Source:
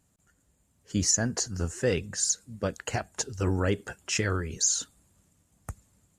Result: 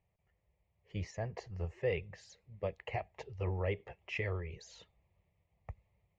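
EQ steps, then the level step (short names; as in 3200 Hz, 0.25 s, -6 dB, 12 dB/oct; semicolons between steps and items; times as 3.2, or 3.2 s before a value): ladder low-pass 2400 Hz, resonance 60%; fixed phaser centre 620 Hz, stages 4; +5.0 dB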